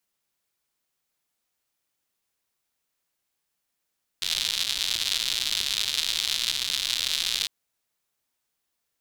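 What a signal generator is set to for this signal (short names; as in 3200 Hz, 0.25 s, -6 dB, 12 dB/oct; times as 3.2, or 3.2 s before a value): rain from filtered ticks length 3.25 s, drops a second 160, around 3700 Hz, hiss -21.5 dB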